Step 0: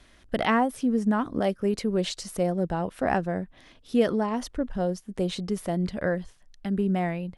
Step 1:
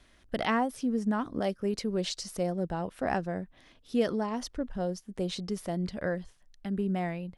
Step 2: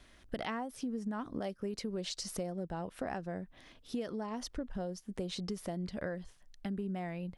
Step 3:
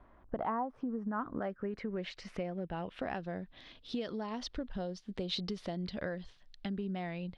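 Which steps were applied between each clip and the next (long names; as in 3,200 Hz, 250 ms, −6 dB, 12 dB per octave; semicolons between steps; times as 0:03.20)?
dynamic equaliser 5,200 Hz, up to +6 dB, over −52 dBFS, Q 1.6; level −5 dB
downward compressor, threshold −36 dBFS, peak gain reduction 14 dB; level +1 dB
low-pass filter sweep 1,000 Hz → 3,900 Hz, 0:00.59–0:03.36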